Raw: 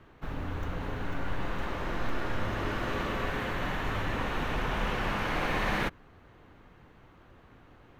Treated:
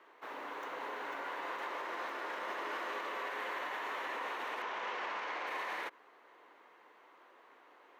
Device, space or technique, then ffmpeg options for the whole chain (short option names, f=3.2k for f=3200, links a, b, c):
laptop speaker: -filter_complex "[0:a]highpass=f=380:w=0.5412,highpass=f=380:w=1.3066,equalizer=f=1k:t=o:w=0.32:g=7,equalizer=f=2k:t=o:w=0.33:g=4.5,alimiter=level_in=4dB:limit=-24dB:level=0:latency=1:release=70,volume=-4dB,asettb=1/sr,asplit=3[a][b][c];[a]atrim=end=4.624[d];[b]atrim=start=4.62:end=5.47,asetpts=PTS-STARTPTS,afade=t=in:d=0.004:c=qsin,afade=t=out:st=0.846:d=0.004:c=qsin,lowpass=f=6.9k:w=0.5412,lowpass=f=6.9k:w=1.3066[e];[c]atrim=start=5.466[f];[d][e]acrossfade=d=0.004:c1=hsin:c2=qsin[g];[g][f]acrossfade=d=0.004:c1=qsin:c2=hsin,volume=-3dB"